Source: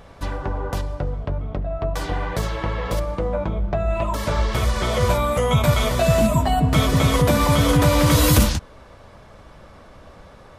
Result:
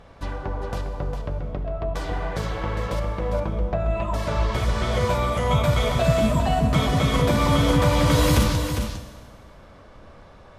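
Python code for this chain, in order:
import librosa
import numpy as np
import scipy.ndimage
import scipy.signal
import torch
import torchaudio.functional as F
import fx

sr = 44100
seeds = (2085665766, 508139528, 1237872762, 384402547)

y = fx.high_shelf(x, sr, hz=10000.0, db=-12.0)
y = y + 10.0 ** (-7.5 / 20.0) * np.pad(y, (int(404 * sr / 1000.0), 0))[:len(y)]
y = fx.rev_schroeder(y, sr, rt60_s=1.6, comb_ms=25, drr_db=9.0)
y = y * 10.0 ** (-3.5 / 20.0)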